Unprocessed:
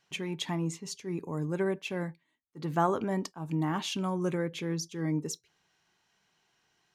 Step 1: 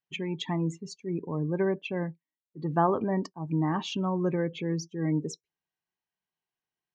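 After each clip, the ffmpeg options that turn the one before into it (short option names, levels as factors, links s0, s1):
-af "bandreject=f=1400:w=9.5,afftdn=nr=23:nf=-42,lowpass=f=3300:p=1,volume=1.41"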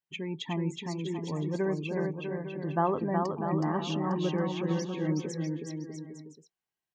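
-af "aecho=1:1:370|647.5|855.6|1012|1129:0.631|0.398|0.251|0.158|0.1,volume=0.708"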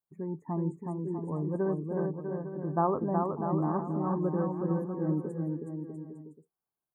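-af "asuperstop=centerf=3800:order=12:qfactor=0.5"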